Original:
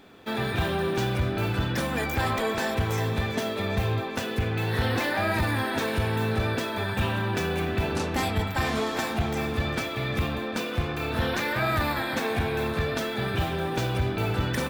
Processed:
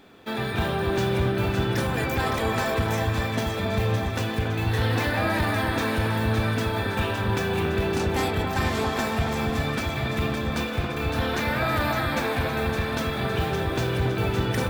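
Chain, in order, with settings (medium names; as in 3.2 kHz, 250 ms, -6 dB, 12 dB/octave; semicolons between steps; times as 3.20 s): echo whose repeats swap between lows and highs 281 ms, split 1.6 kHz, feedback 68%, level -3 dB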